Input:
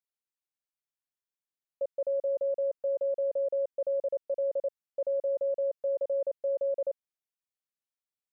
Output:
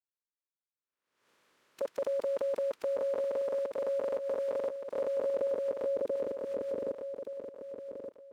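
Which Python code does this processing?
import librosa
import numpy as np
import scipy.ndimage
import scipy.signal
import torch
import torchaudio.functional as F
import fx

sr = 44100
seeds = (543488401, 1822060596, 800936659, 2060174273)

y = fx.spec_flatten(x, sr, power=0.45)
y = fx.peak_eq(y, sr, hz=740.0, db=-14.5, octaves=0.63)
y = fx.level_steps(y, sr, step_db=13)
y = fx.fold_sine(y, sr, drive_db=4, ceiling_db=-22.0)
y = fx.filter_sweep_bandpass(y, sr, from_hz=700.0, to_hz=350.0, start_s=4.79, end_s=6.48, q=1.2)
y = fx.echo_feedback(y, sr, ms=1173, feedback_pct=22, wet_db=-8.0)
y = fx.pre_swell(y, sr, db_per_s=73.0)
y = F.gain(torch.from_numpy(y), 2.0).numpy()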